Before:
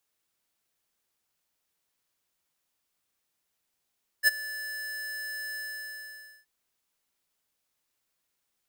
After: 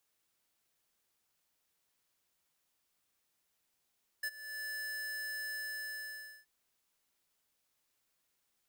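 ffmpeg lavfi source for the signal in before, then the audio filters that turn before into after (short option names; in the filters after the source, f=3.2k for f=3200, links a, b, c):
-f lavfi -i "aevalsrc='0.126*(2*lt(mod(1740*t,1),0.5)-1)':d=2.224:s=44100,afade=t=in:d=0.045,afade=t=out:st=0.045:d=0.022:silence=0.119,afade=t=out:st=1.33:d=0.894"
-af "acompressor=threshold=-41dB:ratio=6"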